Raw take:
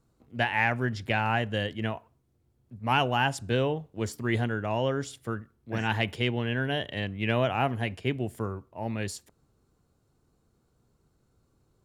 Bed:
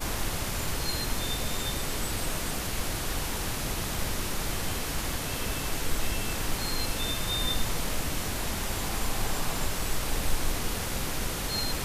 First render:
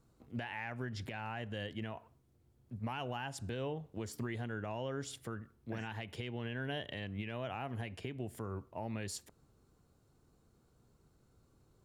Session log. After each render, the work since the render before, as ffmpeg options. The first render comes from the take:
-af "acompressor=threshold=0.0224:ratio=4,alimiter=level_in=1.78:limit=0.0631:level=0:latency=1:release=171,volume=0.562"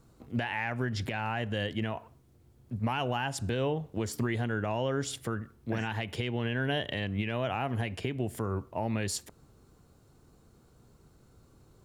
-af "volume=2.82"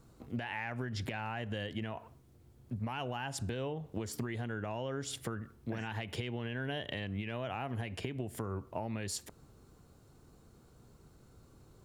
-af "acompressor=threshold=0.02:ratio=6"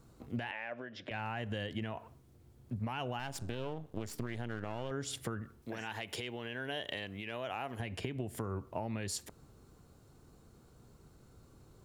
-filter_complex "[0:a]asettb=1/sr,asplit=3[s0][s1][s2];[s0]atrim=end=0.514[s3];[s1]atrim=start=0.51:end=1.11,asetpts=PTS-STARTPTS,afade=t=in:d=0.004:c=qsin,afade=t=out:st=0.596:d=0.004:c=qsin,highpass=360,equalizer=f=410:t=q:w=4:g=-5,equalizer=f=580:t=q:w=4:g=8,equalizer=f=860:t=q:w=4:g=-8,equalizer=f=1300:t=q:w=4:g=-5,equalizer=f=2100:t=q:w=4:g=-4,equalizer=f=4400:t=q:w=4:g=-9,lowpass=f=4600:w=0.5412,lowpass=f=4600:w=1.3066[s4];[s2]atrim=start=1.106[s5];[s3][s4]acrossfade=d=0.004:c1=hsin:c2=qsin[s6];[s6][s5]acrossfade=d=0.004:c1=qsin:c2=hsin,asettb=1/sr,asplit=3[s7][s8][s9];[s7]atrim=end=3.194[s10];[s8]atrim=start=3.19:end=4.91,asetpts=PTS-STARTPTS,afade=t=in:d=0.004:c=qsin,afade=t=out:st=1.716:d=0.004:c=qsin,aeval=exprs='if(lt(val(0),0),0.251*val(0),val(0))':c=same[s11];[s9]atrim=start=4.906[s12];[s10][s11]acrossfade=d=0.004:c1=hsin:c2=qsin[s13];[s13][s12]acrossfade=d=0.004:c1=qsin:c2=hsin,asettb=1/sr,asplit=3[s14][s15][s16];[s14]atrim=end=5.624[s17];[s15]atrim=start=5.62:end=7.8,asetpts=PTS-STARTPTS,afade=t=in:d=0.004:c=qsin,afade=t=out:st=2.176:d=0.004:c=qsin,bass=f=250:g=-10,treble=f=4000:g=6[s18];[s16]atrim=start=7.796[s19];[s17][s18]acrossfade=d=0.004:c1=hsin:c2=qsin[s20];[s20][s19]acrossfade=d=0.004:c1=qsin:c2=hsin"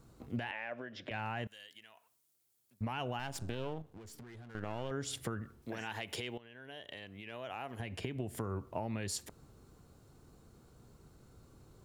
-filter_complex "[0:a]asettb=1/sr,asplit=3[s0][s1][s2];[s0]atrim=end=1.474[s3];[s1]atrim=start=1.47:end=2.81,asetpts=PTS-STARTPTS,afade=t=in:d=0.004:c=qsin,afade=t=out:st=1.336:d=0.004:c=qsin,aderivative[s4];[s2]atrim=start=2.806[s5];[s3][s4]acrossfade=d=0.004:c1=hsin:c2=qsin[s6];[s6][s5]acrossfade=d=0.004:c1=qsin:c2=hsin,asettb=1/sr,asplit=3[s7][s8][s9];[s7]atrim=end=3.824[s10];[s8]atrim=start=3.82:end=4.55,asetpts=PTS-STARTPTS,afade=t=in:d=0.004:c=qsin,afade=t=out:st=0.726:d=0.004:c=qsin,aeval=exprs='(tanh(100*val(0)+0.55)-tanh(0.55))/100':c=same[s11];[s9]atrim=start=4.546[s12];[s10][s11]acrossfade=d=0.004:c1=hsin:c2=qsin[s13];[s13][s12]acrossfade=d=0.004:c1=qsin:c2=hsin,asplit=2[s14][s15];[s14]atrim=end=6.38,asetpts=PTS-STARTPTS,afade=t=out:st=6.376:d=0.004:c=hsin:silence=0.158489[s16];[s15]atrim=start=6.38,asetpts=PTS-STARTPTS,afade=t=in:d=1.92:silence=0.158489[s17];[s16][s17]concat=n=2:v=0:a=1"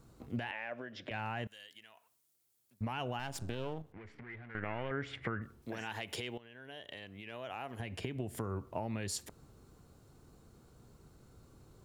-filter_complex "[0:a]asettb=1/sr,asplit=3[s0][s1][s2];[s0]atrim=end=3.924[s3];[s1]atrim=start=3.92:end=5.42,asetpts=PTS-STARTPTS,afade=t=in:d=0.004:c=qsin,afade=t=out:st=1.496:d=0.004:c=qsin,lowpass=f=2100:t=q:w=4.5[s4];[s2]atrim=start=5.416[s5];[s3][s4]acrossfade=d=0.004:c1=hsin:c2=qsin[s6];[s6][s5]acrossfade=d=0.004:c1=qsin:c2=hsin"

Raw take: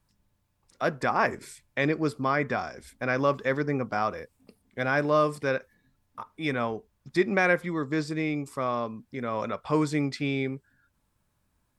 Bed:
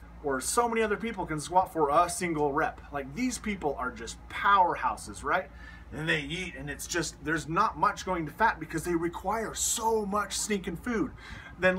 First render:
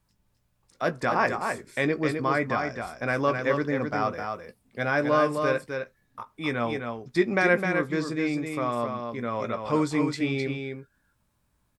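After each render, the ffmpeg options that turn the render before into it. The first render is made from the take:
-filter_complex "[0:a]asplit=2[s0][s1];[s1]adelay=17,volume=0.282[s2];[s0][s2]amix=inputs=2:normalize=0,aecho=1:1:259:0.531"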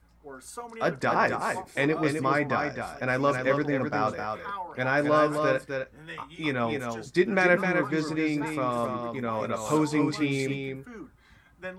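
-filter_complex "[1:a]volume=0.211[s0];[0:a][s0]amix=inputs=2:normalize=0"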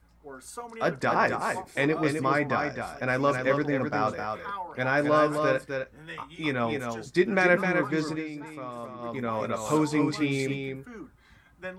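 -filter_complex "[0:a]asplit=3[s0][s1][s2];[s0]atrim=end=8.24,asetpts=PTS-STARTPTS,afade=t=out:st=8.07:d=0.17:c=qsin:silence=0.316228[s3];[s1]atrim=start=8.24:end=8.97,asetpts=PTS-STARTPTS,volume=0.316[s4];[s2]atrim=start=8.97,asetpts=PTS-STARTPTS,afade=t=in:d=0.17:c=qsin:silence=0.316228[s5];[s3][s4][s5]concat=n=3:v=0:a=1"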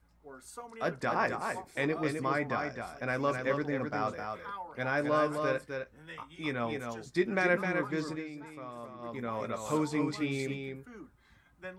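-af "volume=0.501"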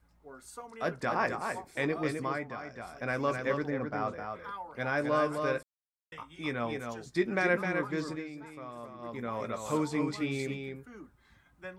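-filter_complex "[0:a]asettb=1/sr,asplit=3[s0][s1][s2];[s0]atrim=end=3.704[s3];[s1]atrim=start=3.7:end=4.44,asetpts=PTS-STARTPTS,afade=t=in:d=0.004:c=qsin,afade=t=out:st=0.736:d=0.004:c=qsin,highshelf=f=3300:g=-9.5[s4];[s2]atrim=start=4.436[s5];[s3][s4]acrossfade=d=0.004:c1=hsin:c2=qsin[s6];[s6][s5]acrossfade=d=0.004:c1=qsin:c2=hsin,asplit=5[s7][s8][s9][s10][s11];[s7]atrim=end=2.51,asetpts=PTS-STARTPTS,afade=t=out:st=2.15:d=0.36:silence=0.398107[s12];[s8]atrim=start=2.51:end=2.64,asetpts=PTS-STARTPTS,volume=0.398[s13];[s9]atrim=start=2.64:end=5.63,asetpts=PTS-STARTPTS,afade=t=in:d=0.36:silence=0.398107,afade=t=out:st=2.986:d=0.004:c=hsin[s14];[s10]atrim=start=5.63:end=6.12,asetpts=PTS-STARTPTS,volume=0[s15];[s11]atrim=start=6.12,asetpts=PTS-STARTPTS,afade=t=in:d=0.004:c=hsin[s16];[s12][s13][s14][s15][s16]concat=n=5:v=0:a=1"

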